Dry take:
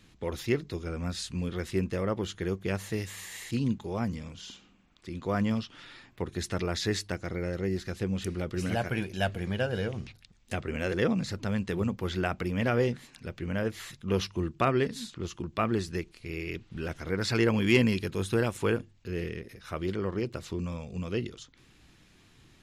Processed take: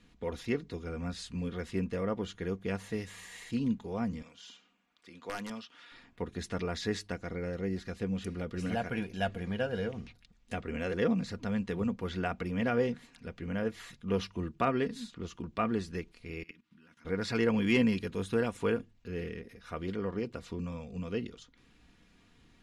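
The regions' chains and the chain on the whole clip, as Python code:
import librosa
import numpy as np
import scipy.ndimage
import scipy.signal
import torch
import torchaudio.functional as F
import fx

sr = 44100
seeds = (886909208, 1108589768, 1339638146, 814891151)

y = fx.chain(x, sr, fx.highpass(hz=820.0, slope=6),
    fx.overflow_wrap(gain_db=24.5), at=(4.22, 5.92))
y = fx.chain(y, sr, fx.highpass(hz=220.0, slope=12),
    fx.band_shelf(hz=530.0, db=-12.5, octaves=1.3),
    fx.level_steps(step_db=19), at=(16.43, 17.05))
y = scipy.signal.sosfilt(scipy.signal.butter(6, 12000.0, 'lowpass', fs=sr, output='sos'), y)
y = fx.high_shelf(y, sr, hz=3900.0, db=-7.0)
y = y + 0.44 * np.pad(y, (int(4.2 * sr / 1000.0), 0))[:len(y)]
y = y * librosa.db_to_amplitude(-3.5)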